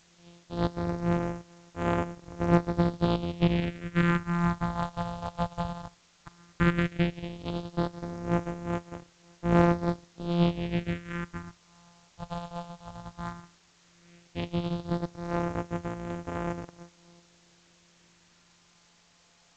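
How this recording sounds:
a buzz of ramps at a fixed pitch in blocks of 256 samples
phaser sweep stages 4, 0.14 Hz, lowest notch 330–3,900 Hz
a quantiser's noise floor 10 bits, dither triangular
G.722

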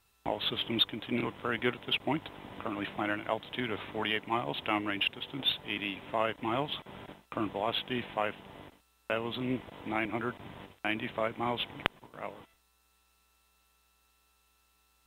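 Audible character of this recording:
background noise floor −70 dBFS
spectral slope −2.0 dB per octave

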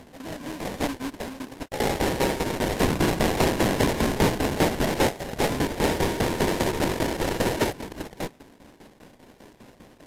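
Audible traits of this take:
a buzz of ramps at a fixed pitch in blocks of 16 samples
tremolo saw down 5 Hz, depth 80%
aliases and images of a low sample rate 1,300 Hz, jitter 20%
AAC

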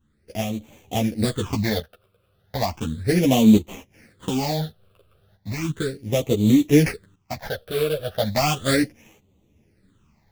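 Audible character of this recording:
aliases and images of a low sample rate 4,000 Hz, jitter 20%
phaser sweep stages 8, 0.35 Hz, lowest notch 250–1,600 Hz
tremolo saw up 0.56 Hz, depth 75%
a shimmering, thickened sound

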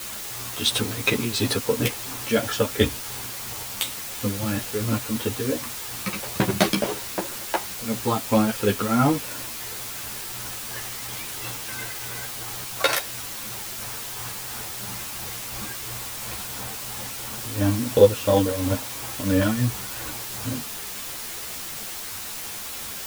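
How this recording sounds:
tremolo triangle 2.9 Hz, depth 75%
a quantiser's noise floor 6 bits, dither triangular
a shimmering, thickened sound

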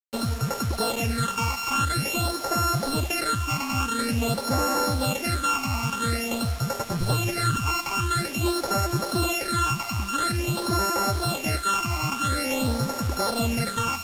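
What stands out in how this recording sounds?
a buzz of ramps at a fixed pitch in blocks of 32 samples
phaser sweep stages 8, 0.48 Hz, lowest notch 490–3,300 Hz
a quantiser's noise floor 6 bits, dither none
Ogg Vorbis

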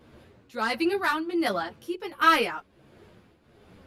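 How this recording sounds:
tremolo triangle 1.4 Hz, depth 75%
a shimmering, thickened sound

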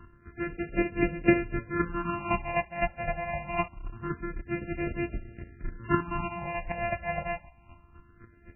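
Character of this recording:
a buzz of ramps at a fixed pitch in blocks of 128 samples
phaser sweep stages 6, 0.25 Hz, lowest notch 320–1,100 Hz
chopped level 3.9 Hz, depth 65%, duty 20%
MP3

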